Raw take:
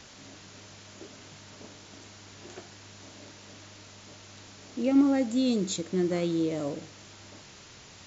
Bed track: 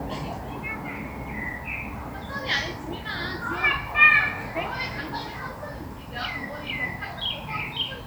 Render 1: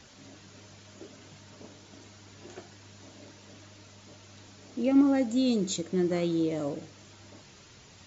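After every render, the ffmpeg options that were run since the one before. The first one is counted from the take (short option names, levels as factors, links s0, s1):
-af "afftdn=nr=6:nf=-50"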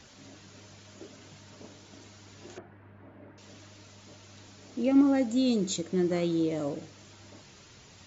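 -filter_complex "[0:a]asettb=1/sr,asplit=3[s0][s1][s2];[s0]atrim=end=2.584[s3];[s1]atrim=start=2.58:end=3.38,asetpts=PTS-STARTPTS,afade=t=in:d=0.004:c=qsin,afade=t=out:st=0.796:d=0.004:c=qsin,lowpass=f=1900:w=0.5412,lowpass=f=1900:w=1.3066[s4];[s2]atrim=start=3.376[s5];[s3][s4]acrossfade=d=0.004:c1=hsin:c2=qsin[s6];[s6][s5]acrossfade=d=0.004:c1=qsin:c2=hsin"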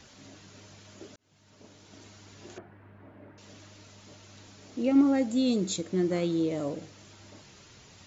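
-filter_complex "[0:a]asplit=2[s0][s1];[s0]atrim=end=1.16,asetpts=PTS-STARTPTS,afade=t=out:st=1.156:d=0.004:c=hsin[s2];[s1]atrim=start=1.16,asetpts=PTS-STARTPTS,afade=t=in:d=0.88[s3];[s2][s3]concat=n=2:v=0:a=1"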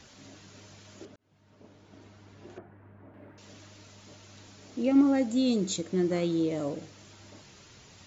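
-filter_complex "[0:a]asettb=1/sr,asplit=3[s0][s1][s2];[s0]atrim=end=1.054[s3];[s1]atrim=start=1.05:end=3.14,asetpts=PTS-STARTPTS,afade=t=in:d=0.004:c=qsin,afade=t=out:st=2.086:d=0.004:c=qsin,lowpass=f=1500:p=1[s4];[s2]atrim=start=3.136[s5];[s3][s4]acrossfade=d=0.004:c1=hsin:c2=qsin[s6];[s6][s5]acrossfade=d=0.004:c1=qsin:c2=hsin"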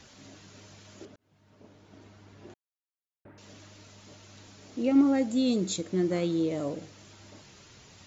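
-filter_complex "[0:a]asplit=3[s0][s1][s2];[s0]atrim=end=2.54,asetpts=PTS-STARTPTS,afade=t=out:st=2.536:d=0.004:c=hsin[s3];[s1]atrim=start=2.54:end=3.25,asetpts=PTS-STARTPTS,volume=0[s4];[s2]atrim=start=3.25,asetpts=PTS-STARTPTS,afade=t=in:d=0.004:c=hsin[s5];[s3][s4][s5]concat=n=3:v=0:a=1"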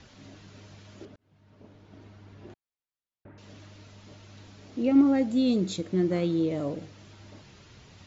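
-af "lowpass=5000,lowshelf=f=170:g=6.5"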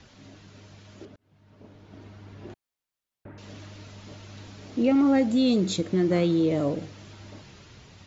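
-filter_complex "[0:a]acrossover=split=570[s0][s1];[s0]alimiter=limit=0.075:level=0:latency=1[s2];[s2][s1]amix=inputs=2:normalize=0,dynaudnorm=f=730:g=5:m=1.88"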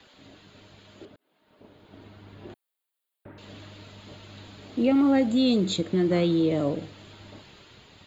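-filter_complex "[0:a]acrossover=split=270[s0][s1];[s0]aeval=exprs='sgn(val(0))*max(abs(val(0))-0.00188,0)':c=same[s2];[s2][s1]amix=inputs=2:normalize=0,aexciter=amount=1.2:drive=2:freq=3100"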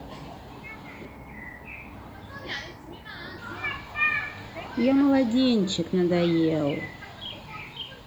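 -filter_complex "[1:a]volume=0.355[s0];[0:a][s0]amix=inputs=2:normalize=0"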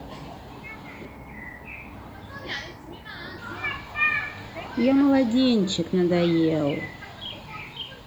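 -af "volume=1.19"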